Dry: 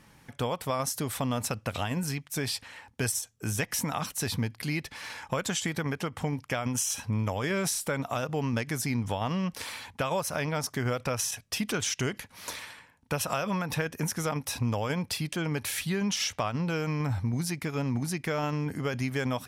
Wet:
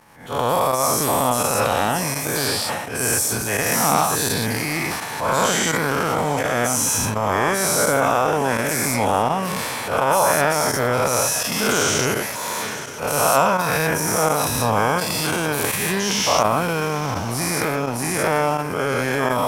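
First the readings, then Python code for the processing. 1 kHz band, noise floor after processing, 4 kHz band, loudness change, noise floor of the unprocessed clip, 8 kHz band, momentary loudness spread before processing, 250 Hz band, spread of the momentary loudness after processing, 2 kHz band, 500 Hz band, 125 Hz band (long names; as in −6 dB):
+16.0 dB, −28 dBFS, +10.0 dB, +11.0 dB, −60 dBFS, +12.0 dB, 5 LU, +6.5 dB, 6 LU, +12.5 dB, +13.0 dB, +4.0 dB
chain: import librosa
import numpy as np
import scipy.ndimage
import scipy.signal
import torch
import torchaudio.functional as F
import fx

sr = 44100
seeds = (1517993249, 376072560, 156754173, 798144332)

y = fx.spec_dilate(x, sr, span_ms=240)
y = fx.echo_diffused(y, sr, ms=932, feedback_pct=41, wet_db=-14)
y = fx.volume_shaper(y, sr, bpm=84, per_beat=1, depth_db=-15, release_ms=68.0, shape='fast start')
y = fx.high_shelf(y, sr, hz=8200.0, db=10.5)
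y = fx.transient(y, sr, attack_db=-10, sustain_db=7)
y = fx.peak_eq(y, sr, hz=830.0, db=11.5, octaves=2.2)
y = y * 10.0 ** (-2.0 / 20.0)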